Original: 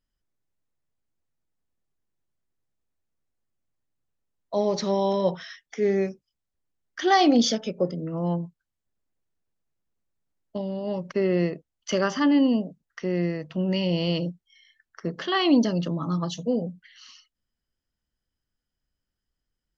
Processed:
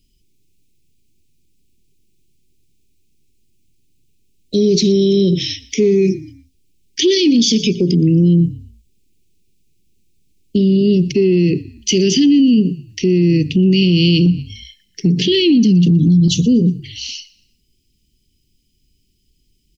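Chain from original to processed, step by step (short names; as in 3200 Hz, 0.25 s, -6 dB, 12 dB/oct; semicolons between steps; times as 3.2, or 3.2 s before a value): Chebyshev band-stop 400–2400 Hz, order 4; 14.26–16.28 bell 190 Hz +11.5 dB 0.48 oct; compressor, threshold -24 dBFS, peak gain reduction 11 dB; frequency-shifting echo 0.119 s, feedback 37%, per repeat -38 Hz, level -21.5 dB; maximiser +27.5 dB; gain -5 dB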